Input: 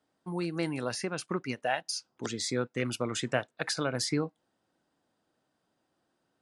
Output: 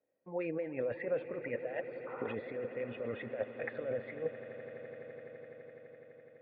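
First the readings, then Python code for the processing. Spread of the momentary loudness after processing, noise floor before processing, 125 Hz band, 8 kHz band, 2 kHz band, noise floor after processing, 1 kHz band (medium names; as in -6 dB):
15 LU, -79 dBFS, -12.5 dB, under -40 dB, -8.0 dB, -59 dBFS, -12.0 dB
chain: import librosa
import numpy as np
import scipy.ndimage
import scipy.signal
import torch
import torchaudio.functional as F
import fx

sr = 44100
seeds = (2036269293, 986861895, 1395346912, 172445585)

p1 = fx.notch(x, sr, hz=1800.0, q=9.9)
p2 = fx.noise_reduce_blind(p1, sr, reduce_db=12)
p3 = fx.over_compress(p2, sr, threshold_db=-39.0, ratio=-1.0)
p4 = fx.spec_paint(p3, sr, seeds[0], shape='noise', start_s=2.06, length_s=0.29, low_hz=740.0, high_hz=1500.0, level_db=-39.0)
p5 = fx.formant_cascade(p4, sr, vowel='e')
p6 = p5 + fx.echo_swell(p5, sr, ms=84, loudest=8, wet_db=-18.0, dry=0)
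y = p6 * 10.0 ** (12.5 / 20.0)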